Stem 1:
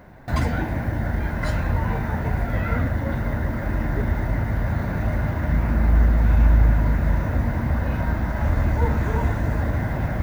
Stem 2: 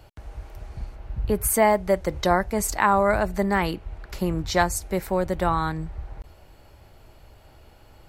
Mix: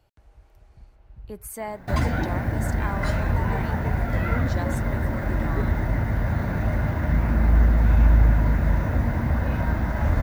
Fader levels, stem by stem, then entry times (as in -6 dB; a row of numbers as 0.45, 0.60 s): -0.5, -14.5 dB; 1.60, 0.00 s